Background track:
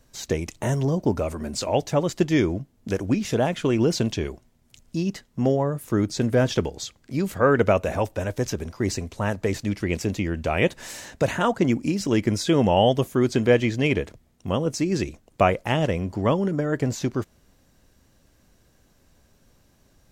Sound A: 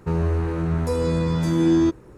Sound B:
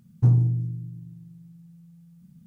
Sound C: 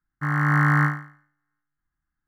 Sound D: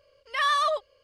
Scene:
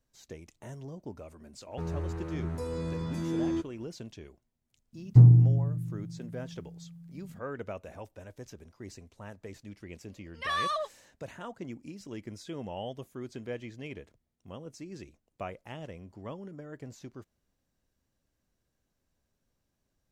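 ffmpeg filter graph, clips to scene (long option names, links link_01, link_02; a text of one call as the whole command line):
ffmpeg -i bed.wav -i cue0.wav -i cue1.wav -i cue2.wav -i cue3.wav -filter_complex "[0:a]volume=-20dB[link_01];[2:a]tiltshelf=frequency=970:gain=4[link_02];[1:a]atrim=end=2.17,asetpts=PTS-STARTPTS,volume=-12.5dB,afade=type=in:duration=0.004:curve=hsin,afade=type=out:start_time=2.166:duration=0.004:curve=hsin,adelay=1710[link_03];[link_02]atrim=end=2.46,asetpts=PTS-STARTPTS,volume=-1dB,afade=type=in:duration=0.004:curve=hsin,afade=type=out:start_time=2.456:duration=0.004:curve=hsin,adelay=217413S[link_04];[4:a]atrim=end=1.03,asetpts=PTS-STARTPTS,volume=-7dB,afade=type=in:duration=0.004:curve=hsin,afade=type=out:start_time=1.026:duration=0.004:curve=hsin,adelay=10080[link_05];[link_01][link_03][link_04][link_05]amix=inputs=4:normalize=0" out.wav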